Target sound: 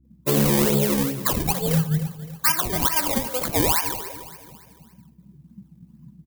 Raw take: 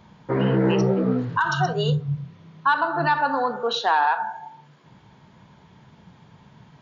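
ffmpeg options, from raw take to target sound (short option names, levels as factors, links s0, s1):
-filter_complex "[0:a]highpass=f=170:p=1,acrusher=samples=24:mix=1:aa=0.000001:lfo=1:lforange=24:lforate=2.1,aemphasis=mode=production:type=75fm,afftdn=nr=29:nf=-39,lowshelf=f=300:g=10.5,dynaudnorm=f=210:g=3:m=1.78,agate=range=0.0224:threshold=0.00282:ratio=3:detection=peak,aeval=exprs='val(0)+0.00141*(sin(2*PI*60*n/s)+sin(2*PI*2*60*n/s)/2+sin(2*PI*3*60*n/s)/3+sin(2*PI*4*60*n/s)/4+sin(2*PI*5*60*n/s)/5)':c=same,asplit=2[s0][s1];[s1]aecho=0:1:307|614|921|1228:0.2|0.0838|0.0352|0.0148[s2];[s0][s2]amix=inputs=2:normalize=0,asetrate=48000,aresample=44100"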